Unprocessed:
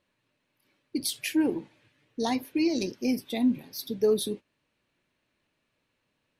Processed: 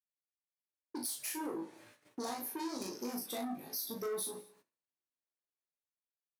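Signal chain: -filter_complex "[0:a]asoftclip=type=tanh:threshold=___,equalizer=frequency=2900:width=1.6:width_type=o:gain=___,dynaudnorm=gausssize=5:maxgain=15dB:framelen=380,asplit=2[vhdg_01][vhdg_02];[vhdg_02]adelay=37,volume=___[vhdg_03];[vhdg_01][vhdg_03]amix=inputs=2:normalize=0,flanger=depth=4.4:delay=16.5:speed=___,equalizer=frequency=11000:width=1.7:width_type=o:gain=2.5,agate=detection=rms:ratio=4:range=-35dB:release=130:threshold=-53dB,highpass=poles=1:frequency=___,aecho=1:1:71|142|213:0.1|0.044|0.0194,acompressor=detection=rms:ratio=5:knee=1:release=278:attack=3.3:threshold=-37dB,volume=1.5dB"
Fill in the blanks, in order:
-29.5dB, -14.5, -3dB, 0.47, 1000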